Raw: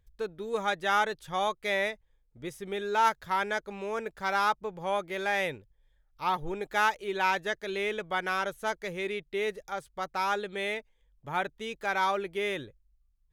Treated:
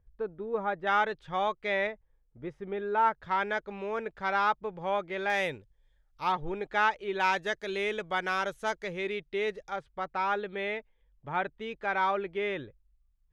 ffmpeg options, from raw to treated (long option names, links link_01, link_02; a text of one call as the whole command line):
ffmpeg -i in.wav -af "asetnsamples=nb_out_samples=441:pad=0,asendcmd='0.87 lowpass f 3000;1.87 lowpass f 1600;3.23 lowpass f 3300;5.3 lowpass f 8600;6.32 lowpass f 3500;7.2 lowpass f 8100;8.84 lowpass f 4900;9.76 lowpass f 2700',lowpass=1300" out.wav